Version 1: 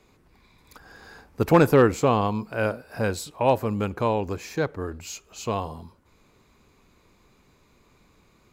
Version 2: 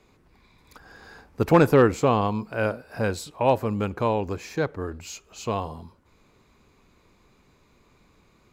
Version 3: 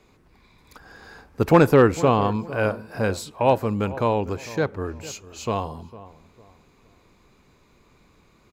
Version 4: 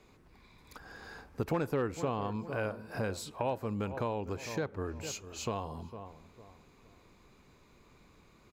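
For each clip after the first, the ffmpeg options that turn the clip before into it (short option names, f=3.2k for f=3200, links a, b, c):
-af "highshelf=f=8.4k:g=-5.5"
-filter_complex "[0:a]asplit=2[a][b];[b]adelay=453,lowpass=f=1.4k:p=1,volume=-16.5dB,asplit=2[c][d];[d]adelay=453,lowpass=f=1.4k:p=1,volume=0.33,asplit=2[e][f];[f]adelay=453,lowpass=f=1.4k:p=1,volume=0.33[g];[a][c][e][g]amix=inputs=4:normalize=0,volume=2dB"
-af "acompressor=threshold=-30dB:ratio=3,volume=-3.5dB"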